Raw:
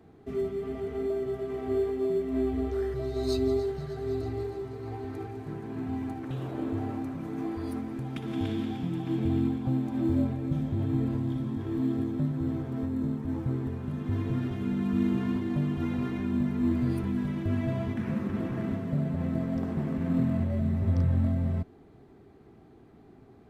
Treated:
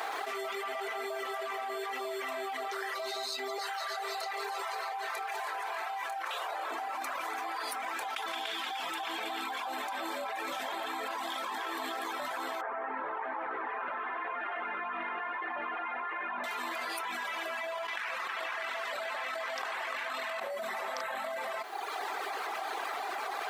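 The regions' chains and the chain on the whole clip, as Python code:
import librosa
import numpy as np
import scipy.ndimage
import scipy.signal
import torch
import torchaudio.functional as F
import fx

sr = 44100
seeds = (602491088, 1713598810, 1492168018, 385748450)

y = fx.chain(x, sr, fx.cheby2_highpass(hz=200.0, order=4, stop_db=40),
    fx.doubler(ms=27.0, db=-8.0), at=(3.58, 6.71))
y = fx.chain(y, sr, fx.lowpass(hz=2100.0, slope=24),
    fx.echo_single(ms=98, db=-6.0), at=(12.61, 16.44))
y = fx.chain(y, sr, fx.highpass(hz=190.0, slope=12),
    fx.peak_eq(hz=3100.0, db=9.5, octaves=3.0),
    fx.env_flatten(amount_pct=70), at=(17.88, 20.4))
y = fx.dereverb_blind(y, sr, rt60_s=0.85)
y = scipy.signal.sosfilt(scipy.signal.butter(4, 790.0, 'highpass', fs=sr, output='sos'), y)
y = fx.env_flatten(y, sr, amount_pct=100)
y = y * librosa.db_to_amplitude(-3.0)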